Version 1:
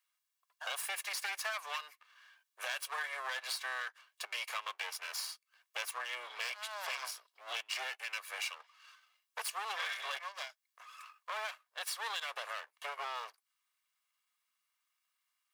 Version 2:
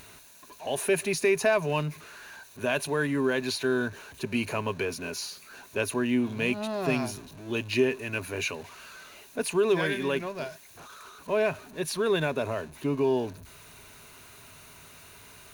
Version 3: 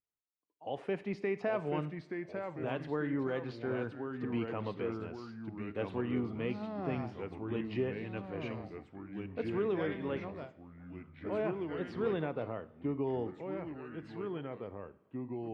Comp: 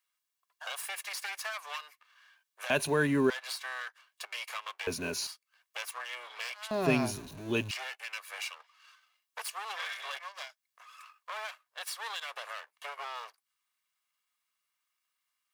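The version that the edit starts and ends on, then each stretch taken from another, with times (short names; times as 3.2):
1
2.7–3.3 from 2
4.87–5.27 from 2
6.71–7.71 from 2
not used: 3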